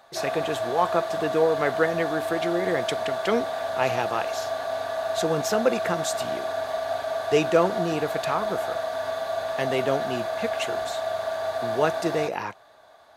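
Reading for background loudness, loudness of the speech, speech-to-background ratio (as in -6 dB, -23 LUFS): -29.0 LUFS, -27.5 LUFS, 1.5 dB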